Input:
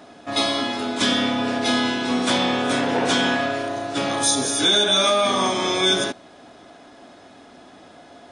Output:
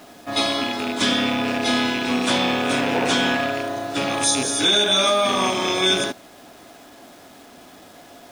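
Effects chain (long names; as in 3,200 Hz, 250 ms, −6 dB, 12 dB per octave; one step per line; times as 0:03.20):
loose part that buzzes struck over −30 dBFS, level −17 dBFS
bit-depth reduction 8 bits, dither none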